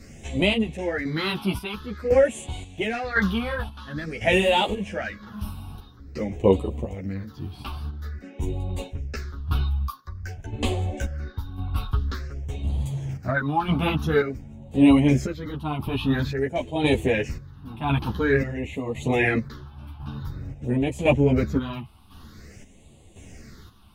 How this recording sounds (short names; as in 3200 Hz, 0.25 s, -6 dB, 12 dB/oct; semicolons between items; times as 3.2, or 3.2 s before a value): phasing stages 6, 0.49 Hz, lowest notch 490–1500 Hz; chopped level 0.95 Hz, depth 60%, duty 50%; a shimmering, thickened sound